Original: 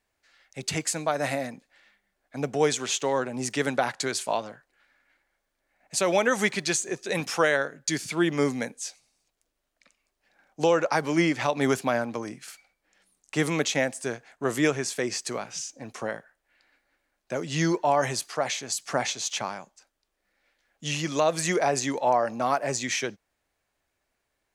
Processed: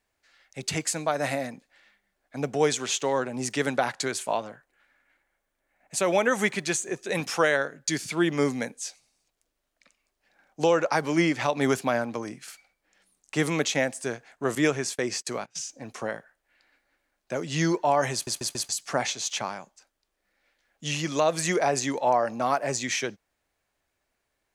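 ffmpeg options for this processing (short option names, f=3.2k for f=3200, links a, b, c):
-filter_complex "[0:a]asettb=1/sr,asplit=3[a][b][c];[a]atrim=end=4.084[d];[b]atrim=start=4.08:end=7.13,asetpts=PTS-STARTPTS,afade=t=in:d=0.004:c=qsin,afade=t=out:st=3.046:d=0.004:c=qsin,equalizer=f=4.7k:t=o:w=0.77:g=-5.5[e];[c]atrim=start=7.126[f];[d][e]acrossfade=d=0.004:c1=hsin:c2=qsin[g];[g][f]acrossfade=d=0.004:c1=qsin:c2=hsin,asettb=1/sr,asplit=3[h][i][j];[h]atrim=end=14.554[k];[i]atrim=start=14.55:end=15.67,asetpts=PTS-STARTPTS,afade=t=in:d=0.004:c=qsin,afade=t=out:st=1.116:d=0.004:c=qsin,agate=range=-24dB:threshold=-38dB:ratio=16:release=100:detection=peak[l];[j]atrim=start=15.666[m];[k][l]acrossfade=d=0.004:c1=hsin:c2=qsin[n];[n][m]acrossfade=d=0.004:c1=qsin:c2=hsin,asplit=5[o][p][q][r][s];[o]atrim=end=18.272[t];[p]atrim=start=18.128:end=18.272[u];[q]atrim=start=18.128:end=18.272[v];[r]atrim=start=18.128:end=18.272[w];[s]atrim=start=18.688[x];[t][u]acrossfade=d=0.004:c1=hsin:c2=hsin[y];[y][v]acrossfade=d=0.004:c1=hsin:c2=hsin[z];[z][w]acrossfade=d=0.004:c1=hsin:c2=hsin[aa];[aa][x]acrossfade=d=0.004:c1=hsin:c2=hsin"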